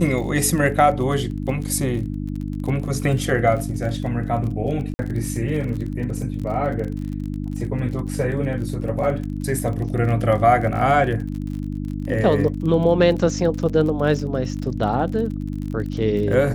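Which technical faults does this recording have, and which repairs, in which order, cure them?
crackle 37/s -29 dBFS
hum 50 Hz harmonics 6 -27 dBFS
4.94–4.99 gap 50 ms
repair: de-click; de-hum 50 Hz, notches 6; interpolate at 4.94, 50 ms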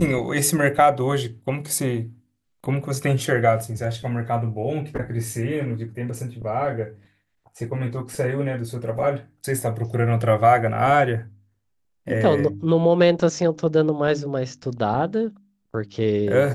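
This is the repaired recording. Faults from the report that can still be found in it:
none

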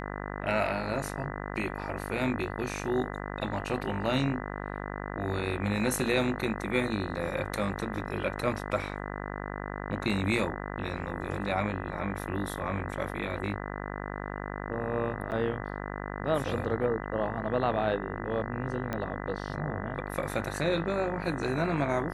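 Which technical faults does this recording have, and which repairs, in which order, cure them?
buzz 50 Hz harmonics 40 -37 dBFS
15.31–15.32 gap 8.7 ms
18.93 pop -19 dBFS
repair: de-click; de-hum 50 Hz, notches 40; interpolate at 15.31, 8.7 ms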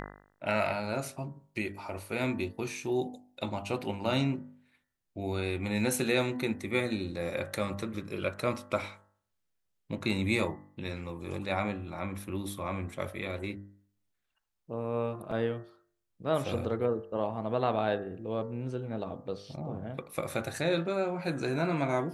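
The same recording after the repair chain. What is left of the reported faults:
18.93 pop

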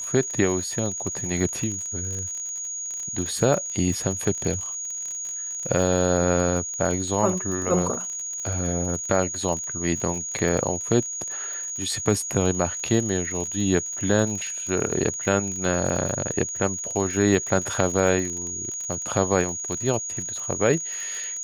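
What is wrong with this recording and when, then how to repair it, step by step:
crackle 39/s -29 dBFS
tone 6700 Hz -29 dBFS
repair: de-click; notch 6700 Hz, Q 30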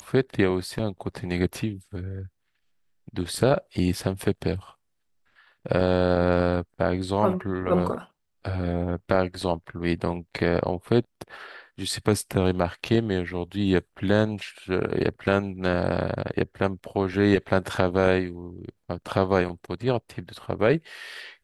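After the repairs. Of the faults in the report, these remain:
none

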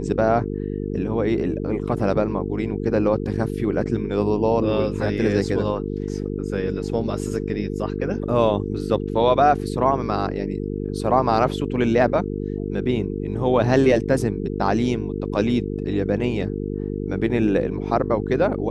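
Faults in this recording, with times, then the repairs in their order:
buzz 50 Hz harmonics 9 -27 dBFS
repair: de-hum 50 Hz, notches 9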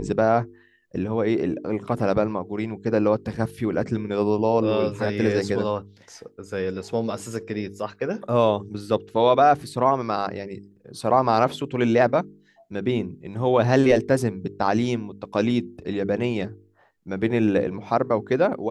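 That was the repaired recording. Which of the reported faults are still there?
none

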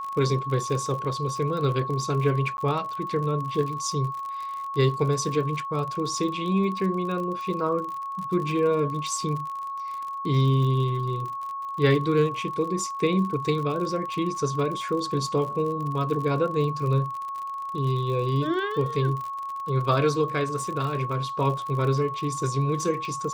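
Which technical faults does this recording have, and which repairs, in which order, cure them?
crackle 51/s -32 dBFS
tone 1100 Hz -30 dBFS
2.57–2.58 gap 11 ms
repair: de-click; notch 1100 Hz, Q 30; interpolate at 2.57, 11 ms

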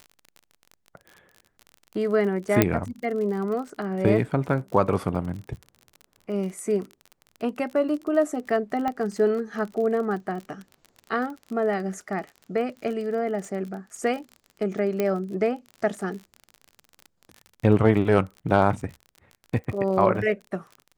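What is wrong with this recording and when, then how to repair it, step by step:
crackle 37/s -33 dBFS
2.62 pop -3 dBFS
8.88 pop -16 dBFS
15 pop -12 dBFS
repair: de-click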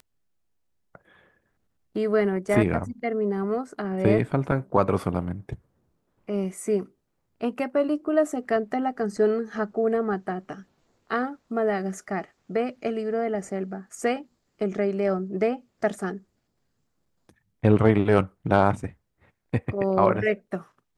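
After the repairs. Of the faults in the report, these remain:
2.62 pop
15 pop

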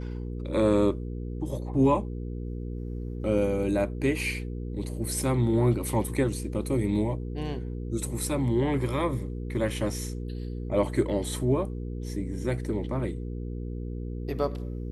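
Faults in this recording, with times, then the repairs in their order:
hum 60 Hz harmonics 8 -34 dBFS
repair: de-hum 60 Hz, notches 8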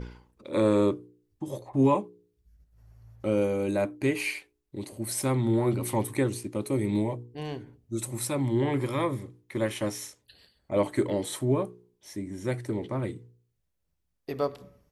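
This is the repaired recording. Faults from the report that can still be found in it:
none

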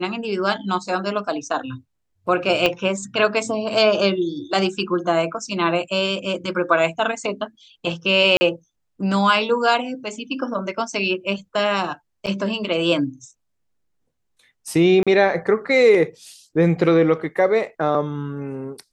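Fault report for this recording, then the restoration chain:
2.66 pop -6 dBFS
8.37–8.41 gap 40 ms
12.26–12.27 gap 7.7 ms
15.03–15.07 gap 36 ms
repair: de-click; interpolate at 8.37, 40 ms; interpolate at 12.26, 7.7 ms; interpolate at 15.03, 36 ms

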